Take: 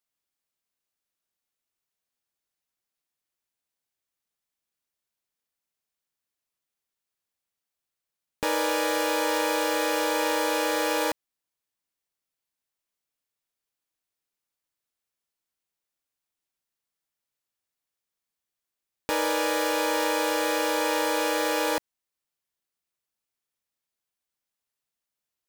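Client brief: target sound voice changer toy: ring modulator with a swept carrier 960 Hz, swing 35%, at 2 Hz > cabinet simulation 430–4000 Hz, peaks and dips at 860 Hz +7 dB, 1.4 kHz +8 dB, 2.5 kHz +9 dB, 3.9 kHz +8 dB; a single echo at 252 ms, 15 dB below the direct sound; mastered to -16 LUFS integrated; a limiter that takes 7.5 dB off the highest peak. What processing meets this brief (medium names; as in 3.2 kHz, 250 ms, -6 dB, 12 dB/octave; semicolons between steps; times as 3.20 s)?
peak limiter -21 dBFS; delay 252 ms -15 dB; ring modulator with a swept carrier 960 Hz, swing 35%, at 2 Hz; cabinet simulation 430–4000 Hz, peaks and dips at 860 Hz +7 dB, 1.4 kHz +8 dB, 2.5 kHz +9 dB, 3.9 kHz +8 dB; trim +12 dB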